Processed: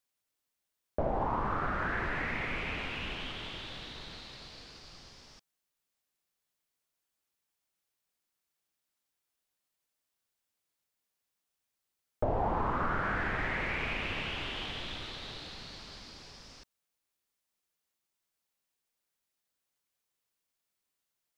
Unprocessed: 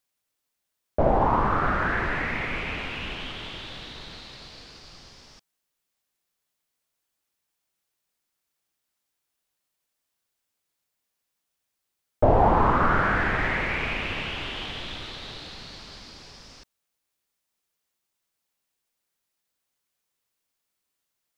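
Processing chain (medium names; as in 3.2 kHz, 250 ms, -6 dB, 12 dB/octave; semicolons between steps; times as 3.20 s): compression 2.5:1, threshold -26 dBFS, peak gain reduction 8.5 dB; trim -4.5 dB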